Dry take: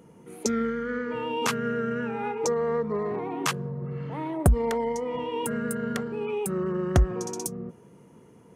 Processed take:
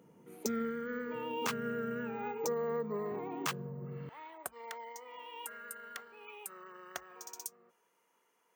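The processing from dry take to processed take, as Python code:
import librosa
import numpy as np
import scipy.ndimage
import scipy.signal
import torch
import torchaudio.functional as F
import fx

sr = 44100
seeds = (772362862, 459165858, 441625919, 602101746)

y = fx.highpass(x, sr, hz=fx.steps((0.0, 120.0), (4.09, 1100.0)), slope=12)
y = np.repeat(scipy.signal.resample_poly(y, 1, 2), 2)[:len(y)]
y = y * 10.0 ** (-8.5 / 20.0)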